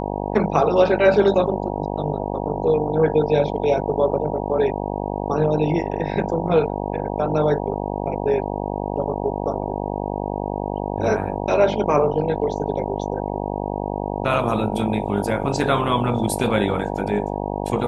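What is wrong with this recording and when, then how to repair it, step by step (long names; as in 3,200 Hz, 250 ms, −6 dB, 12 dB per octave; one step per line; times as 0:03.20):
mains buzz 50 Hz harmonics 19 −26 dBFS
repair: hum removal 50 Hz, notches 19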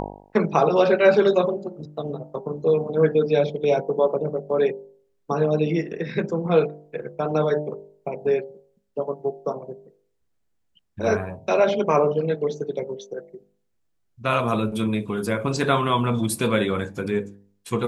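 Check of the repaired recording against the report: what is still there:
none of them is left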